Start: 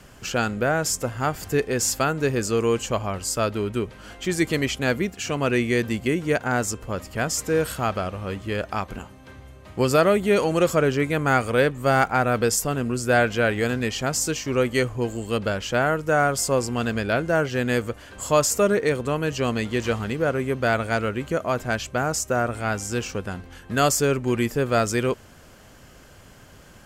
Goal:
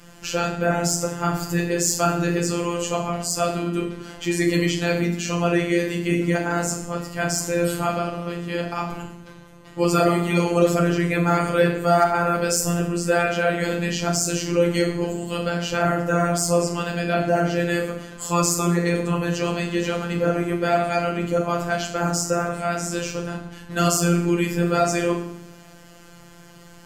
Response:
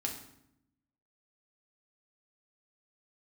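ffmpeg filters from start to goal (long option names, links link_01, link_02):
-filter_complex "[1:a]atrim=start_sample=2205[link_01];[0:a][link_01]afir=irnorm=-1:irlink=0,afftfilt=real='hypot(re,im)*cos(PI*b)':imag='0':win_size=1024:overlap=0.75,aeval=exprs='0.668*(cos(1*acos(clip(val(0)/0.668,-1,1)))-cos(1*PI/2))+0.0335*(cos(5*acos(clip(val(0)/0.668,-1,1)))-cos(5*PI/2))':channel_layout=same,volume=2dB"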